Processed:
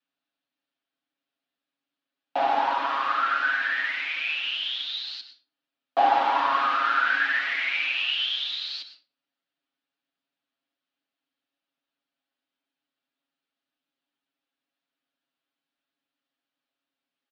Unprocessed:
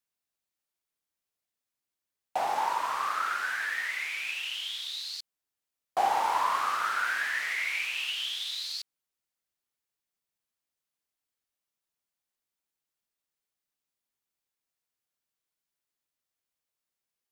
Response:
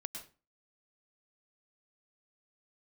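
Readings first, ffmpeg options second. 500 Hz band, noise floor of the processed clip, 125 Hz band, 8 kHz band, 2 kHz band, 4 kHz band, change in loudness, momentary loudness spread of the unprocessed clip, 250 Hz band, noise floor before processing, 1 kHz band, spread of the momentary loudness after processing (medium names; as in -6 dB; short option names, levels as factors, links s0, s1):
+7.5 dB, under -85 dBFS, no reading, under -10 dB, +6.0 dB, +5.5 dB, +5.5 dB, 9 LU, +11.0 dB, under -85 dBFS, +5.0 dB, 9 LU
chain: -filter_complex "[0:a]highpass=f=190:w=0.5412,highpass=f=190:w=1.3066,equalizer=f=290:t=q:w=4:g=7,equalizer=f=410:t=q:w=4:g=-8,equalizer=f=1000:t=q:w=4:g=-6,equalizer=f=2100:t=q:w=4:g=-6,lowpass=f=3700:w=0.5412,lowpass=f=3700:w=1.3066,aecho=1:1:7.3:0.95,asplit=2[s0][s1];[1:a]atrim=start_sample=2205[s2];[s1][s2]afir=irnorm=-1:irlink=0,volume=1.19[s3];[s0][s3]amix=inputs=2:normalize=0"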